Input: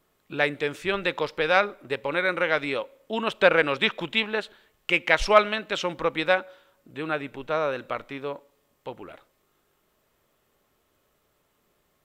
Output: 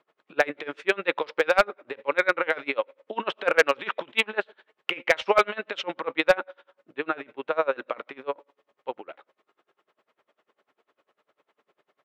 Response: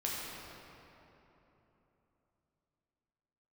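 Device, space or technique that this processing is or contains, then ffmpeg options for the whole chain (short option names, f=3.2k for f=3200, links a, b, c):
helicopter radio: -af "highpass=380,lowpass=2.7k,aeval=exprs='val(0)*pow(10,-28*(0.5-0.5*cos(2*PI*10*n/s))/20)':c=same,asoftclip=type=hard:threshold=-17dB,volume=8.5dB"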